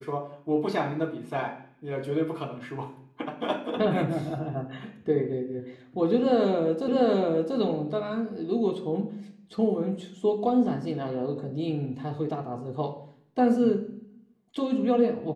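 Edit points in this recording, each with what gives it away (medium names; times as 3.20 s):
6.88 s: repeat of the last 0.69 s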